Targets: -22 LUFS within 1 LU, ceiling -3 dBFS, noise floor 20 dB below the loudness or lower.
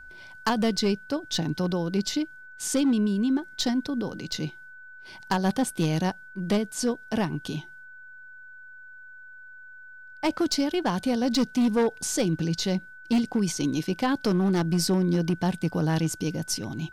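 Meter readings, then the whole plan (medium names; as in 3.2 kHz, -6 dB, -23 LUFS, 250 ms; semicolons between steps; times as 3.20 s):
clipped samples 1.6%; clipping level -18.0 dBFS; steady tone 1.5 kHz; tone level -44 dBFS; loudness -26.5 LUFS; peak level -18.0 dBFS; loudness target -22.0 LUFS
-> clip repair -18 dBFS; band-stop 1.5 kHz, Q 30; trim +4.5 dB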